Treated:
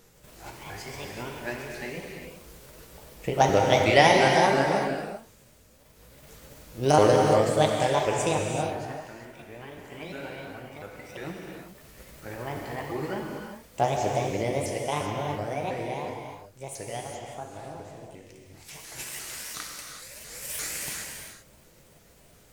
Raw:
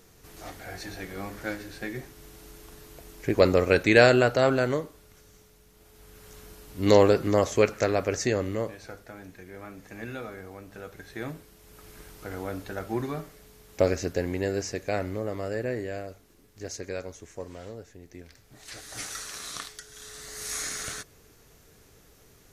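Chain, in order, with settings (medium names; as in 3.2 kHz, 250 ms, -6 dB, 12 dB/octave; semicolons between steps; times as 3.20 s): sawtooth pitch modulation +7.5 st, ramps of 349 ms; gated-style reverb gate 420 ms flat, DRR 0.5 dB; trim -1 dB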